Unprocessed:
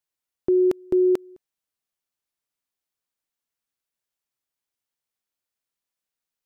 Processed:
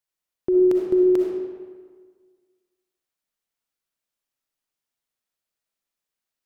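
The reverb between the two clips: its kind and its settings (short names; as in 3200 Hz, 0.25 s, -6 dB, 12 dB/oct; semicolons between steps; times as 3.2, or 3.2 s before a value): digital reverb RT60 1.6 s, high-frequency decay 0.7×, pre-delay 20 ms, DRR -0.5 dB; gain -1.5 dB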